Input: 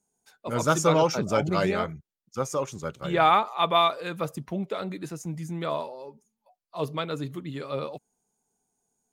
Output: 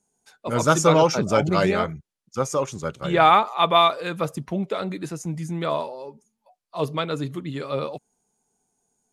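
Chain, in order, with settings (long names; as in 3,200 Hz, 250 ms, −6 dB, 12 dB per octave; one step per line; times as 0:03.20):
low-pass filter 12,000 Hz 24 dB per octave
level +4.5 dB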